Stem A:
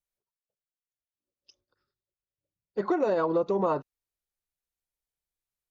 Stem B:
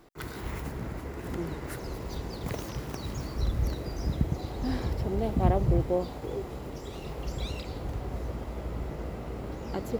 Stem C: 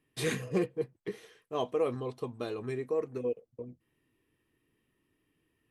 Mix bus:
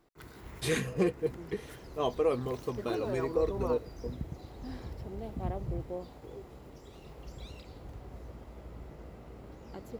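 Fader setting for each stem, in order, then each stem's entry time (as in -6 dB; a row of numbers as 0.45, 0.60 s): -11.0, -11.5, +1.5 dB; 0.00, 0.00, 0.45 s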